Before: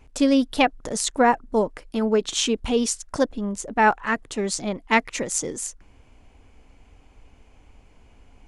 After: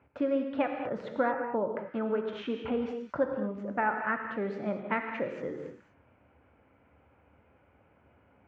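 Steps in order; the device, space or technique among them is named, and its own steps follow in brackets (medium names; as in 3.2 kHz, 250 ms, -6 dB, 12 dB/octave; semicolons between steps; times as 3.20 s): high-pass 87 Hz 24 dB/octave; bass amplifier (compression 4:1, threshold -21 dBFS, peak gain reduction 8.5 dB; cabinet simulation 64–2300 Hz, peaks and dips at 72 Hz +7 dB, 560 Hz +6 dB, 1.4 kHz +8 dB); gated-style reverb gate 250 ms flat, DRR 3.5 dB; trim -7.5 dB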